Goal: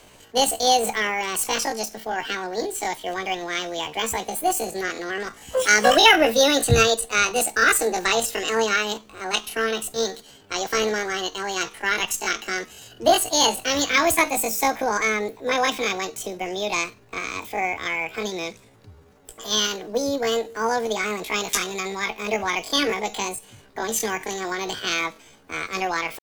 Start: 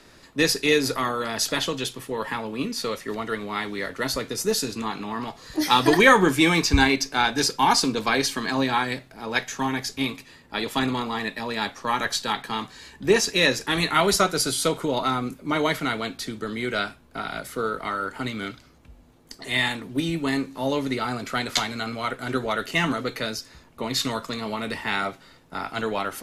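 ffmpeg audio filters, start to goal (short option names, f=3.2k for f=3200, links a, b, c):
-af "highshelf=f=3.1k:g=-2,asetrate=74167,aresample=44100,atempo=0.594604,volume=2dB"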